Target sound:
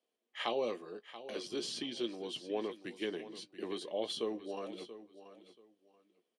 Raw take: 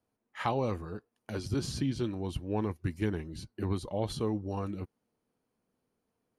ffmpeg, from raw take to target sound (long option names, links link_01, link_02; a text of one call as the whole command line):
ffmpeg -i in.wav -filter_complex "[0:a]highpass=frequency=280:width=0.5412,highpass=frequency=280:width=1.3066,equalizer=frequency=280:width_type=q:width=4:gain=-6,equalizer=frequency=900:width_type=q:width=4:gain=-9,equalizer=frequency=1400:width_type=q:width=4:gain=-9,equalizer=frequency=3200:width_type=q:width=4:gain=10,equalizer=frequency=6700:width_type=q:width=4:gain=-3,lowpass=frequency=9400:width=0.5412,lowpass=frequency=9400:width=1.3066,asplit=2[link_01][link_02];[link_02]adelay=17,volume=-12dB[link_03];[link_01][link_03]amix=inputs=2:normalize=0,asplit=2[link_04][link_05];[link_05]aecho=0:1:682|1364:0.2|0.0439[link_06];[link_04][link_06]amix=inputs=2:normalize=0,volume=-1dB" out.wav